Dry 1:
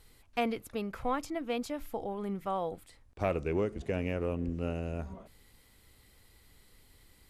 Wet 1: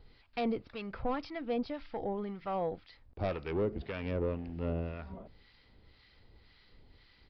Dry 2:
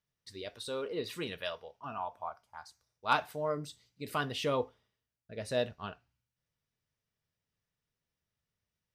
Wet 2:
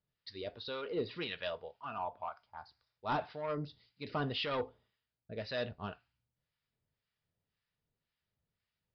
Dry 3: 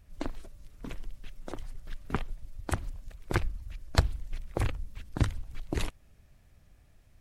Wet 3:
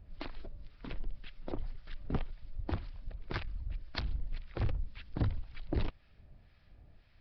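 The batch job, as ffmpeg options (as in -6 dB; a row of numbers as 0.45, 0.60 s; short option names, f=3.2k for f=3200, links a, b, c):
-filter_complex "[0:a]acontrast=72,bandreject=f=1.1k:w=22,aresample=11025,asoftclip=type=tanh:threshold=-21dB,aresample=44100,acrossover=split=940[a][b];[a]aeval=exprs='val(0)*(1-0.7/2+0.7/2*cos(2*PI*1.9*n/s))':c=same[c];[b]aeval=exprs='val(0)*(1-0.7/2-0.7/2*cos(2*PI*1.9*n/s))':c=same[d];[c][d]amix=inputs=2:normalize=0,volume=-3dB"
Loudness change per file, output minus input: -2.0, -3.0, -5.0 LU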